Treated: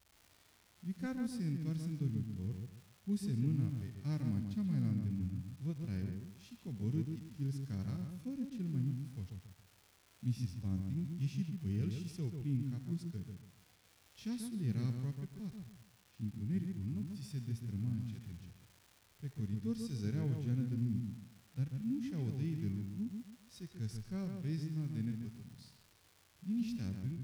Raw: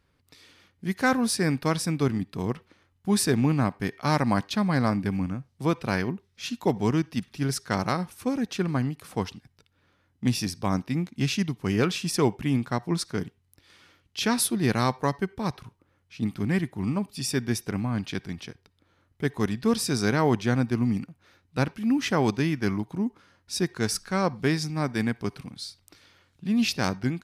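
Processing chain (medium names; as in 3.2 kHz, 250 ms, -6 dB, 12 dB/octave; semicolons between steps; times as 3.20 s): amplifier tone stack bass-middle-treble 10-0-1; crackle 450 per s -52 dBFS; harmonic-percussive split percussive -12 dB; on a send: filtered feedback delay 138 ms, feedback 30%, low-pass 2.6 kHz, level -5 dB; on the sum: trim +4.5 dB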